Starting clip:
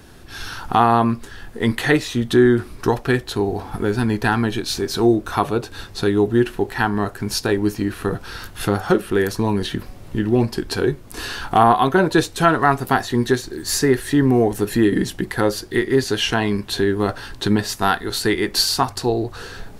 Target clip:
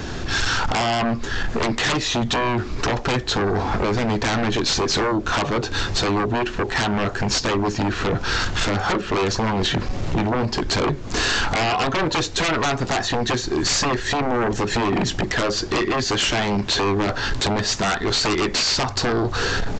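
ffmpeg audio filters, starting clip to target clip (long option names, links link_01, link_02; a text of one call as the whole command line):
ffmpeg -i in.wav -af "acompressor=threshold=-30dB:ratio=3,aresample=16000,aeval=exprs='0.141*sin(PI/2*3.98*val(0)/0.141)':channel_layout=same,aresample=44100" out.wav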